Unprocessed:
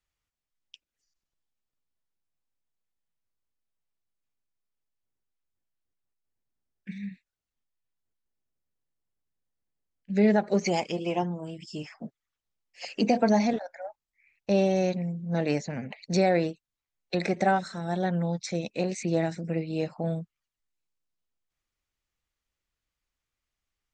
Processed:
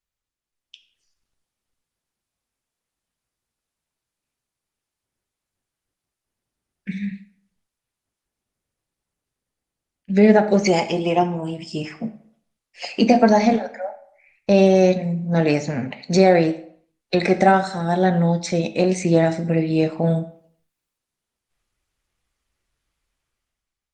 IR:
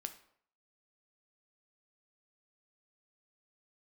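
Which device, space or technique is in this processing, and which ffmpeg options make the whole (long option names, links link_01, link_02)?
speakerphone in a meeting room: -filter_complex "[0:a]asettb=1/sr,asplit=3[link_01][link_02][link_03];[link_01]atrim=end=14.924[link_04];[link_02]atrim=start=14.92:end=15.64,asetpts=PTS-STARTPTS,afade=type=in:duration=0.004:curve=qsin,afade=type=out:start_time=0.716:duration=0.004:curve=qsin,bandreject=frequency=88.57:width_type=h:width=4,bandreject=frequency=177.14:width_type=h:width=4,bandreject=frequency=265.71:width_type=h:width=4[link_05];[link_03]atrim=start=15.636[link_06];[link_04][link_05]acrossfade=duration=0.004:curve1=hsin:curve2=qsin[link_07];[link_07][link_06]acrossfade=duration=0.004:curve1=qsin:curve2=hsin[link_08];[1:a]atrim=start_sample=2205[link_09];[link_08][link_09]afir=irnorm=-1:irlink=0,dynaudnorm=framelen=130:gausssize=11:maxgain=14dB" -ar 48000 -c:a libopus -b:a 32k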